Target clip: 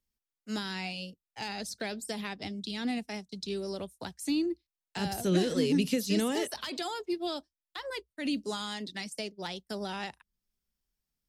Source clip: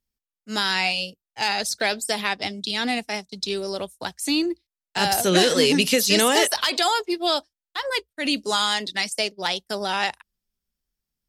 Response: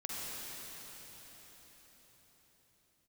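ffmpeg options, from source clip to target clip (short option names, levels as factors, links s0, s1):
-filter_complex "[0:a]acrossover=split=340[s0][s1];[s1]acompressor=threshold=0.00631:ratio=2[s2];[s0][s2]amix=inputs=2:normalize=0,volume=0.75"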